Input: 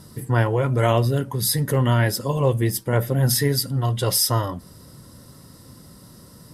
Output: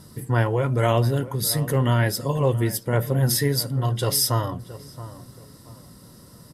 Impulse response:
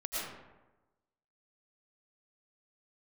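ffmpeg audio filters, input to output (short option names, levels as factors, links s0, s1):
-filter_complex "[0:a]asplit=2[s0][s1];[s1]adelay=674,lowpass=f=1600:p=1,volume=0.178,asplit=2[s2][s3];[s3]adelay=674,lowpass=f=1600:p=1,volume=0.33,asplit=2[s4][s5];[s5]adelay=674,lowpass=f=1600:p=1,volume=0.33[s6];[s0][s2][s4][s6]amix=inputs=4:normalize=0,volume=0.841"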